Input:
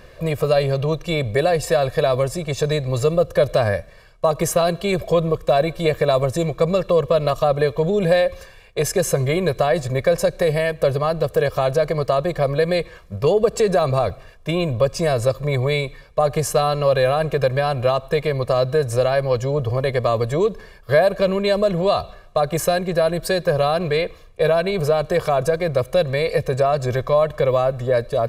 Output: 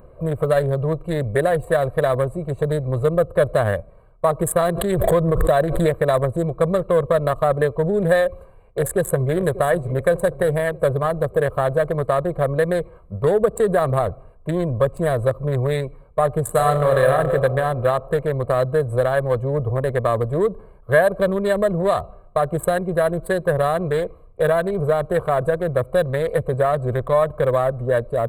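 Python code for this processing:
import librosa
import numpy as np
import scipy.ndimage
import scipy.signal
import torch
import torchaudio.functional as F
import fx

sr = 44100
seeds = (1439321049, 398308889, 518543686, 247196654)

y = fx.pre_swell(x, sr, db_per_s=36.0, at=(4.71, 5.86), fade=0.02)
y = fx.echo_throw(y, sr, start_s=8.18, length_s=1.17, ms=590, feedback_pct=60, wet_db=-14.5)
y = fx.reverb_throw(y, sr, start_s=16.42, length_s=0.73, rt60_s=2.7, drr_db=3.5)
y = fx.wiener(y, sr, points=25)
y = fx.curve_eq(y, sr, hz=(710.0, 1800.0, 2600.0, 3700.0, 5500.0, 8200.0), db=(0, 6, -10, -1, -25, 10))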